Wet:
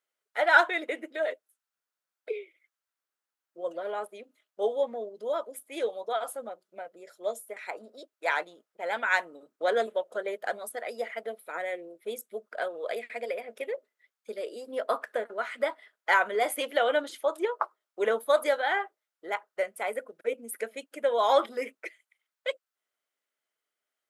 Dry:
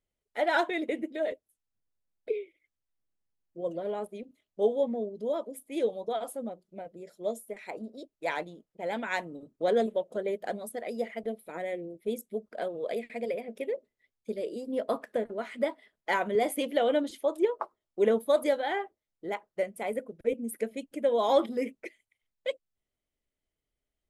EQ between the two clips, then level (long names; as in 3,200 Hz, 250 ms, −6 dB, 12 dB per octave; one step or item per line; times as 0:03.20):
high-pass filter 570 Hz 12 dB per octave
parametric band 1,400 Hz +8.5 dB 0.63 octaves
+3.0 dB